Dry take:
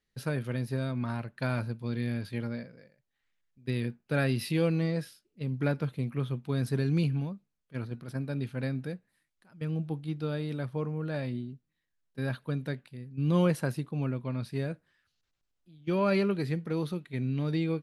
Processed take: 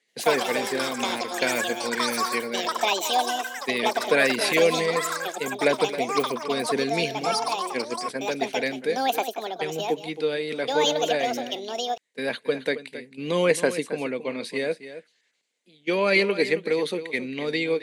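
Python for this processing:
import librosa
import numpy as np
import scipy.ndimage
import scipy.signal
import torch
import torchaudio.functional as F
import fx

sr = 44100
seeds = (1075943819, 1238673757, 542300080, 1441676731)

p1 = fx.high_shelf(x, sr, hz=3200.0, db=11.5)
p2 = fx.hpss(p1, sr, part='percussive', gain_db=6)
p3 = fx.cabinet(p2, sr, low_hz=230.0, low_slope=24, high_hz=8600.0, hz=(320.0, 470.0, 1300.0, 2100.0, 5400.0), db=(-3, 9, -8, 9, -7))
p4 = p3 + fx.echo_single(p3, sr, ms=271, db=-13.0, dry=0)
p5 = fx.echo_pitch(p4, sr, ms=82, semitones=7, count=3, db_per_echo=-3.0)
y = F.gain(torch.from_numpy(p5), 3.0).numpy()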